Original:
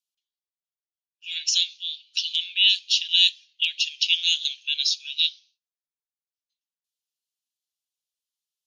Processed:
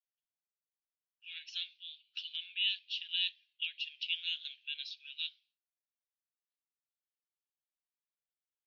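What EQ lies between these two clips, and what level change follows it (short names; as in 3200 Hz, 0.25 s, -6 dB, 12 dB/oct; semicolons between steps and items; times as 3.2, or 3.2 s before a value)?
Gaussian blur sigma 2.5 samples; HPF 1400 Hz; tilt -5.5 dB/oct; 0.0 dB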